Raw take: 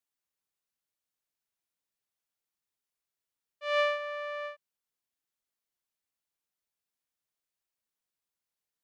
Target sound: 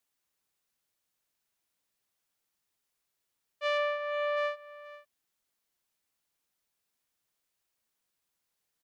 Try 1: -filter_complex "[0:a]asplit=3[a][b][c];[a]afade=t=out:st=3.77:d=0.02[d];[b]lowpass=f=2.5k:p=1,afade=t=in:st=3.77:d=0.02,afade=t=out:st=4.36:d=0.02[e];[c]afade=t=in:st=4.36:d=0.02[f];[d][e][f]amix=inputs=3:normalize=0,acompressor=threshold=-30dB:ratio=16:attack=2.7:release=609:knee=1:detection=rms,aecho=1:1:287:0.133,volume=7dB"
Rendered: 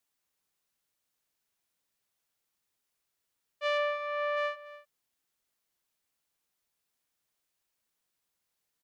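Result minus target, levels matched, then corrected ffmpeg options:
echo 0.198 s early
-filter_complex "[0:a]asplit=3[a][b][c];[a]afade=t=out:st=3.77:d=0.02[d];[b]lowpass=f=2.5k:p=1,afade=t=in:st=3.77:d=0.02,afade=t=out:st=4.36:d=0.02[e];[c]afade=t=in:st=4.36:d=0.02[f];[d][e][f]amix=inputs=3:normalize=0,acompressor=threshold=-30dB:ratio=16:attack=2.7:release=609:knee=1:detection=rms,aecho=1:1:485:0.133,volume=7dB"

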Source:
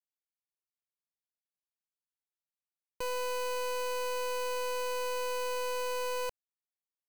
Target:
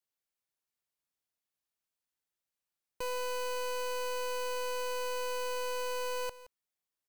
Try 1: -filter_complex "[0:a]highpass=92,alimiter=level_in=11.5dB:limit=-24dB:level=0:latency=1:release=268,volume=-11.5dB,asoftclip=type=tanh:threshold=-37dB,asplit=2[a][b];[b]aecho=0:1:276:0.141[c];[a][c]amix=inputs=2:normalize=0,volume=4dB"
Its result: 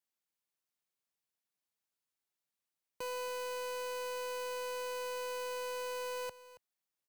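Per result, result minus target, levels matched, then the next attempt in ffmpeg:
echo 0.105 s late; 125 Hz band -6.0 dB
-filter_complex "[0:a]highpass=92,alimiter=level_in=11.5dB:limit=-24dB:level=0:latency=1:release=268,volume=-11.5dB,asoftclip=type=tanh:threshold=-37dB,asplit=2[a][b];[b]aecho=0:1:171:0.141[c];[a][c]amix=inputs=2:normalize=0,volume=4dB"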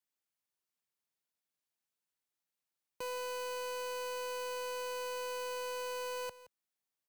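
125 Hz band -6.0 dB
-filter_complex "[0:a]alimiter=level_in=11.5dB:limit=-24dB:level=0:latency=1:release=268,volume=-11.5dB,asoftclip=type=tanh:threshold=-37dB,asplit=2[a][b];[b]aecho=0:1:171:0.141[c];[a][c]amix=inputs=2:normalize=0,volume=4dB"

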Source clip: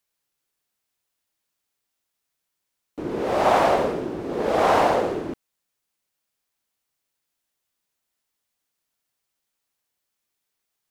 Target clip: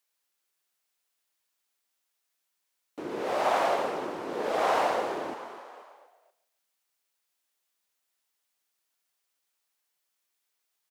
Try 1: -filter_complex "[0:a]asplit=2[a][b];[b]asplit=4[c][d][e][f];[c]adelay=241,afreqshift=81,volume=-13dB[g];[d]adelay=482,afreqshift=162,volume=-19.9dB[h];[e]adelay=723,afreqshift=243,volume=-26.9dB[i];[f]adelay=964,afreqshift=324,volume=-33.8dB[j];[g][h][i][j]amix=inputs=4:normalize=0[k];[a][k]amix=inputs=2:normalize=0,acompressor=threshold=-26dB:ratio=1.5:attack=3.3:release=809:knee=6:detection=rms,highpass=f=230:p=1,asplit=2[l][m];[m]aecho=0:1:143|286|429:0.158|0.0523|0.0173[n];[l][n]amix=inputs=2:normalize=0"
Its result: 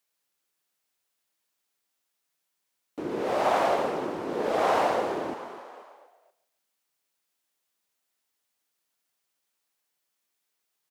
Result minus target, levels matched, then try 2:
250 Hz band +3.0 dB
-filter_complex "[0:a]asplit=2[a][b];[b]asplit=4[c][d][e][f];[c]adelay=241,afreqshift=81,volume=-13dB[g];[d]adelay=482,afreqshift=162,volume=-19.9dB[h];[e]adelay=723,afreqshift=243,volume=-26.9dB[i];[f]adelay=964,afreqshift=324,volume=-33.8dB[j];[g][h][i][j]amix=inputs=4:normalize=0[k];[a][k]amix=inputs=2:normalize=0,acompressor=threshold=-26dB:ratio=1.5:attack=3.3:release=809:knee=6:detection=rms,highpass=f=570:p=1,asplit=2[l][m];[m]aecho=0:1:143|286|429:0.158|0.0523|0.0173[n];[l][n]amix=inputs=2:normalize=0"

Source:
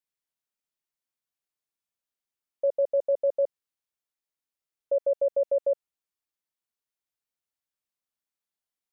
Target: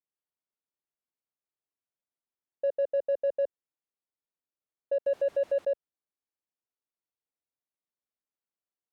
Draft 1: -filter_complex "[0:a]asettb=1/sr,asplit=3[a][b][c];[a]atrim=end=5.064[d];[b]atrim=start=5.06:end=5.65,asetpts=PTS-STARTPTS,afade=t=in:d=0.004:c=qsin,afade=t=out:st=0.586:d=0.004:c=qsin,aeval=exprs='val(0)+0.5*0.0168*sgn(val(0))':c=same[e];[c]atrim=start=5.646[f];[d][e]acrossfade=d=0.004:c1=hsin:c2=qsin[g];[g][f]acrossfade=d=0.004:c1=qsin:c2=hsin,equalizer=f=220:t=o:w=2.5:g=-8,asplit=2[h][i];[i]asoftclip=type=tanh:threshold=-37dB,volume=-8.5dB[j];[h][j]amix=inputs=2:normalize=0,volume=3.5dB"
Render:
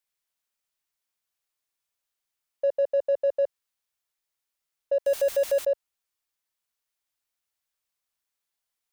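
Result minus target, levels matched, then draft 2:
250 Hz band -3.5 dB
-filter_complex "[0:a]asettb=1/sr,asplit=3[a][b][c];[a]atrim=end=5.064[d];[b]atrim=start=5.06:end=5.65,asetpts=PTS-STARTPTS,afade=t=in:d=0.004:c=qsin,afade=t=out:st=0.586:d=0.004:c=qsin,aeval=exprs='val(0)+0.5*0.0168*sgn(val(0))':c=same[e];[c]atrim=start=5.646[f];[d][e]acrossfade=d=0.004:c1=hsin:c2=qsin[g];[g][f]acrossfade=d=0.004:c1=qsin:c2=hsin,bandpass=f=270:t=q:w=0.83:csg=0,equalizer=f=220:t=o:w=2.5:g=-8,asplit=2[h][i];[i]asoftclip=type=tanh:threshold=-37dB,volume=-8.5dB[j];[h][j]amix=inputs=2:normalize=0,volume=3.5dB"

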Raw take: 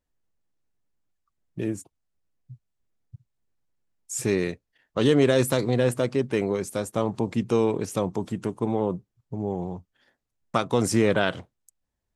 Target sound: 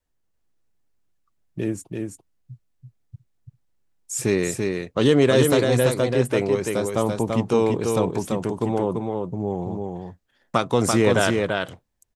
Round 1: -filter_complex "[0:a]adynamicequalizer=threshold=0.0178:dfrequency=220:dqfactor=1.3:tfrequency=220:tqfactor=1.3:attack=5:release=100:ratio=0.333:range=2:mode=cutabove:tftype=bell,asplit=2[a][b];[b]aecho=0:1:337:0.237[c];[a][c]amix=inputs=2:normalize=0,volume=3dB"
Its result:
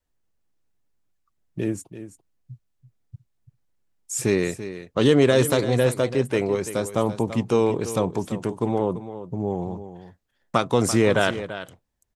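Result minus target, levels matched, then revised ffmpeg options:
echo-to-direct -8.5 dB
-filter_complex "[0:a]adynamicequalizer=threshold=0.0178:dfrequency=220:dqfactor=1.3:tfrequency=220:tqfactor=1.3:attack=5:release=100:ratio=0.333:range=2:mode=cutabove:tftype=bell,asplit=2[a][b];[b]aecho=0:1:337:0.631[c];[a][c]amix=inputs=2:normalize=0,volume=3dB"

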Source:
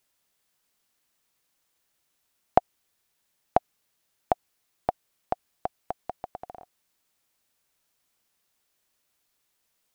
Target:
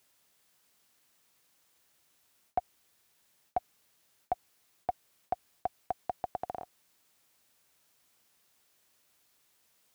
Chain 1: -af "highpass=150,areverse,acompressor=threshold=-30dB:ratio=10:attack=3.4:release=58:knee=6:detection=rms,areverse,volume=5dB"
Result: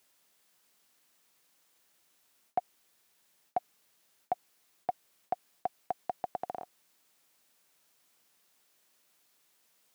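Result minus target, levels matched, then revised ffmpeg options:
125 Hz band -4.5 dB
-af "highpass=54,areverse,acompressor=threshold=-30dB:ratio=10:attack=3.4:release=58:knee=6:detection=rms,areverse,volume=5dB"

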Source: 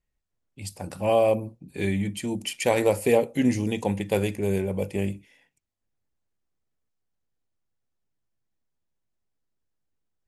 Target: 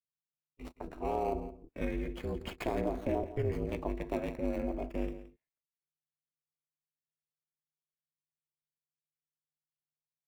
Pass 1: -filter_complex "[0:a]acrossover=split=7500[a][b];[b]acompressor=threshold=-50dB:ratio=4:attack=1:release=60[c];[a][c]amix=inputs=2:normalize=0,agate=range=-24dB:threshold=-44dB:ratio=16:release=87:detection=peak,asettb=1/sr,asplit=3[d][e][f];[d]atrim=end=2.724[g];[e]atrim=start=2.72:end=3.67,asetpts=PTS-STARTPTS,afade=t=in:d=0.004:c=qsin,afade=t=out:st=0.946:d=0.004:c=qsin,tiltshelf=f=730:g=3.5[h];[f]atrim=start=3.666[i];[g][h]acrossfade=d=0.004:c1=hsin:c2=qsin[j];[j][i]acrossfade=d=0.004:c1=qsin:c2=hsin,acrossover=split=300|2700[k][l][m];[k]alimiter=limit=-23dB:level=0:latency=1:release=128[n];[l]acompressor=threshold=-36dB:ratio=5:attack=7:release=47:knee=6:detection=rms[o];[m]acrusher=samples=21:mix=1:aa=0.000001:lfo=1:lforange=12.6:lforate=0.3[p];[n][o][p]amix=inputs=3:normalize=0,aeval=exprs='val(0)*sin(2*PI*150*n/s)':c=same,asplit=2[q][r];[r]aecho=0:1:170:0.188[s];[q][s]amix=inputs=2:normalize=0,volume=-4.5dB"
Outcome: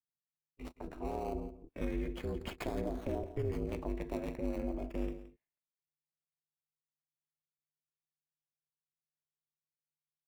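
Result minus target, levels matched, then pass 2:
compressor: peak gain reduction +9 dB
-filter_complex "[0:a]acrossover=split=7500[a][b];[b]acompressor=threshold=-50dB:ratio=4:attack=1:release=60[c];[a][c]amix=inputs=2:normalize=0,agate=range=-24dB:threshold=-44dB:ratio=16:release=87:detection=peak,asettb=1/sr,asplit=3[d][e][f];[d]atrim=end=2.724[g];[e]atrim=start=2.72:end=3.67,asetpts=PTS-STARTPTS,afade=t=in:d=0.004:c=qsin,afade=t=out:st=0.946:d=0.004:c=qsin,tiltshelf=f=730:g=3.5[h];[f]atrim=start=3.666[i];[g][h]acrossfade=d=0.004:c1=hsin:c2=qsin[j];[j][i]acrossfade=d=0.004:c1=qsin:c2=hsin,acrossover=split=300|2700[k][l][m];[k]alimiter=limit=-23dB:level=0:latency=1:release=128[n];[l]acompressor=threshold=-25dB:ratio=5:attack=7:release=47:knee=6:detection=rms[o];[m]acrusher=samples=21:mix=1:aa=0.000001:lfo=1:lforange=12.6:lforate=0.3[p];[n][o][p]amix=inputs=3:normalize=0,aeval=exprs='val(0)*sin(2*PI*150*n/s)':c=same,asplit=2[q][r];[r]aecho=0:1:170:0.188[s];[q][s]amix=inputs=2:normalize=0,volume=-4.5dB"

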